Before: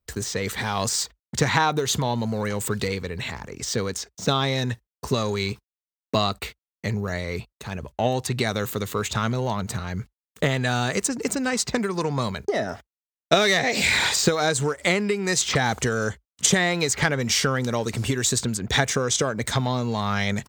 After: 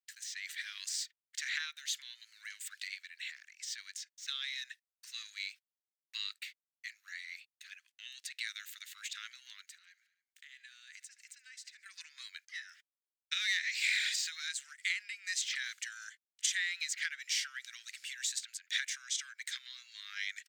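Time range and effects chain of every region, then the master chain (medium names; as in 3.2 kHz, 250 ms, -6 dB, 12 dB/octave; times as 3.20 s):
9.65–11.86 s: peaking EQ 66 Hz +7.5 dB 1.3 oct + feedback delay 71 ms, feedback 57%, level -21 dB + compression 12:1, threshold -32 dBFS
whole clip: steep high-pass 1.7 kHz 48 dB/octave; treble shelf 7.4 kHz -8 dB; trim -9 dB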